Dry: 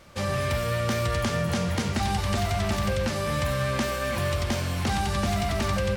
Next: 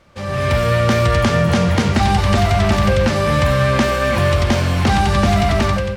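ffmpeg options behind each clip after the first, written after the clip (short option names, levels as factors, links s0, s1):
-af "lowpass=f=3700:p=1,dynaudnorm=f=110:g=7:m=3.98"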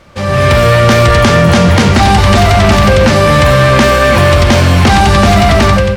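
-af "apsyclip=3.98,volume=0.841"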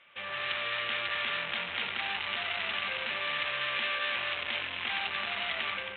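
-af "aresample=8000,asoftclip=type=tanh:threshold=0.224,aresample=44100,bandpass=f=2700:t=q:w=1.9:csg=0,volume=0.447"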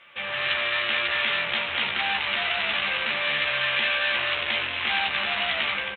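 -filter_complex "[0:a]asplit=2[s0][s1];[s1]adelay=14,volume=0.596[s2];[s0][s2]amix=inputs=2:normalize=0,volume=2.11"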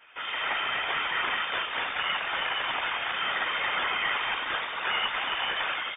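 -af "afftfilt=real='hypot(re,im)*cos(2*PI*random(0))':imag='hypot(re,im)*sin(2*PI*random(1))':win_size=512:overlap=0.75,highshelf=f=2200:g=-8.5,lowpass=f=3100:t=q:w=0.5098,lowpass=f=3100:t=q:w=0.6013,lowpass=f=3100:t=q:w=0.9,lowpass=f=3100:t=q:w=2.563,afreqshift=-3700,volume=2.11"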